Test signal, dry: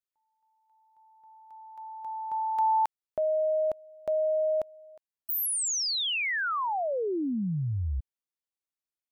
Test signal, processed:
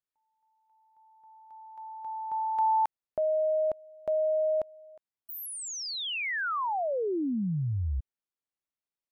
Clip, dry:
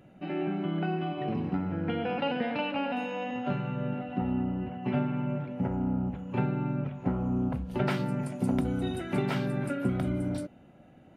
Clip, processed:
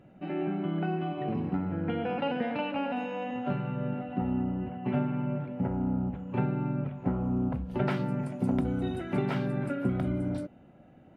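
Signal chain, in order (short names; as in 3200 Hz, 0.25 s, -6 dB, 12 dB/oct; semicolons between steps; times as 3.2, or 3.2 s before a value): high shelf 3700 Hz -10.5 dB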